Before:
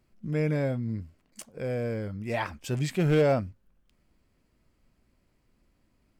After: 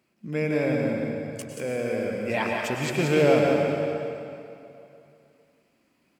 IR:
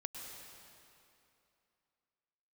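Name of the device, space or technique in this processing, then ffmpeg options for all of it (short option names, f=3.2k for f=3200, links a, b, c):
PA in a hall: -filter_complex "[0:a]highpass=200,equalizer=f=2.5k:t=o:w=0.43:g=5.5,aecho=1:1:180:0.562[a];[1:a]atrim=start_sample=2205[b];[a][b]afir=irnorm=-1:irlink=0,volume=6dB"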